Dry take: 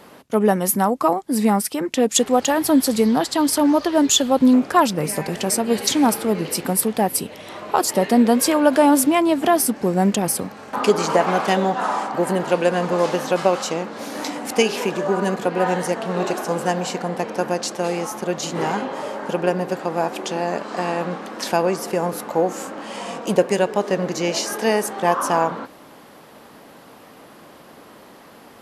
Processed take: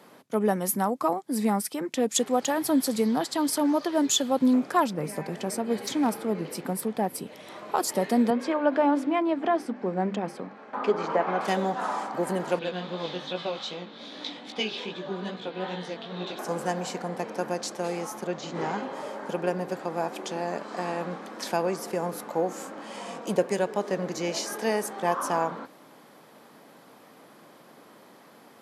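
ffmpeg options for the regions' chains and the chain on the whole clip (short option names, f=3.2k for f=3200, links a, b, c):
-filter_complex "[0:a]asettb=1/sr,asplit=3[a][b][c];[a]atrim=end=4.844[d];[b]atrim=start=4.84:end=7.27,asetpts=PTS-STARTPTS,afade=t=in:d=0.004:c=qsin,afade=t=out:st=2.426:d=0.004:c=qsin,aeval=exprs='0.355*(abs(mod(val(0)/0.355+3,4)-2)-1)':c=same,highshelf=f=3k:g=-8[e];[c]atrim=start=7.266[f];[d][e]acrossfade=d=0.004:c1=hsin:c2=qsin[g];[g][f]acrossfade=d=0.004:c1=qsin:c2=hsin,asettb=1/sr,asplit=3[h][i][j];[h]atrim=end=8.304[k];[i]atrim=start=8.3:end=11.41,asetpts=PTS-STARTPTS,afade=t=in:d=0.004:c=qsin,afade=t=out:st=3.106:d=0.004:c=qsin,highpass=180,lowpass=2.6k,bandreject=f=50:t=h:w=6,bandreject=f=100:t=h:w=6,bandreject=f=150:t=h:w=6,bandreject=f=200:t=h:w=6,bandreject=f=250:t=h:w=6,bandreject=f=300:t=h:w=6,bandreject=f=350:t=h:w=6[l];[j]atrim=start=11.406[m];[k][l]acrossfade=d=0.004:c1=hsin:c2=qsin[n];[n][m]acrossfade=d=0.004:c1=qsin:c2=hsin,asettb=1/sr,asplit=3[o][p][q];[o]atrim=end=12.594[r];[p]atrim=start=12.59:end=16.39,asetpts=PTS-STARTPTS,afade=t=in:d=0.004:c=qsin,afade=t=out:st=3.796:d=0.004:c=qsin,equalizer=f=930:w=0.31:g=-5,flanger=delay=16:depth=6.2:speed=2.5,lowpass=f=3.6k:t=q:w=6.6[s];[q]atrim=start=16.386[t];[r][s]acrossfade=d=0.004:c1=hsin:c2=qsin[u];[u][t]acrossfade=d=0.004:c1=qsin:c2=hsin,asettb=1/sr,asplit=3[v][w][x];[v]atrim=end=18.274[y];[w]atrim=start=18.27:end=18.83,asetpts=PTS-STARTPTS,afade=t=in:d=0.004:c=qsin,afade=t=out:st=0.556:d=0.004:c=qsin,lowpass=f=7.3k:w=0.5412,lowpass=f=7.3k:w=1.3066,acrossover=split=4300[z][aa];[aa]acompressor=threshold=-41dB:ratio=4:attack=1:release=60[ab];[z][ab]amix=inputs=2:normalize=0[ac];[x]atrim=start=18.826[ad];[y][ac]acrossfade=d=0.004:c1=hsin:c2=qsin[ae];[ae][ad]acrossfade=d=0.004:c1=qsin:c2=hsin,highpass=f=120:w=0.5412,highpass=f=120:w=1.3066,bandreject=f=2.8k:w=18,volume=-7.5dB"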